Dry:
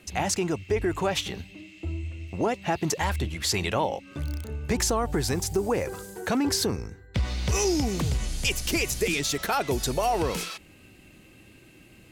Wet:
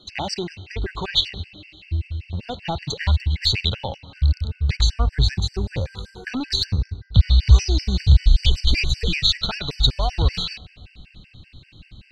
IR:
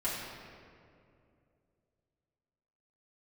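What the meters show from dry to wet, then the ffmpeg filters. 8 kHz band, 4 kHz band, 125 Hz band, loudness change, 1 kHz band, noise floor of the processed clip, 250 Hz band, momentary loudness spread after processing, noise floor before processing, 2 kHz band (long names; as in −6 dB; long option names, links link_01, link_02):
−7.5 dB, +10.0 dB, +11.0 dB, +5.5 dB, −4.0 dB, −53 dBFS, −3.0 dB, 14 LU, −53 dBFS, +0.5 dB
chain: -filter_complex "[0:a]lowpass=frequency=4000:width_type=q:width=9.5,aeval=exprs='0.841*(cos(1*acos(clip(val(0)/0.841,-1,1)))-cos(1*PI/2))+0.015*(cos(4*acos(clip(val(0)/0.841,-1,1)))-cos(4*PI/2))+0.00944*(cos(5*acos(clip(val(0)/0.841,-1,1)))-cos(5*PI/2))':channel_layout=same,asubboost=boost=9.5:cutoff=110,asplit=2[link_01][link_02];[1:a]atrim=start_sample=2205,asetrate=52920,aresample=44100[link_03];[link_02][link_03]afir=irnorm=-1:irlink=0,volume=-23.5dB[link_04];[link_01][link_04]amix=inputs=2:normalize=0,afftfilt=real='re*gt(sin(2*PI*5.2*pts/sr)*(1-2*mod(floor(b*sr/1024/1500),2)),0)':imag='im*gt(sin(2*PI*5.2*pts/sr)*(1-2*mod(floor(b*sr/1024/1500),2)),0)':win_size=1024:overlap=0.75"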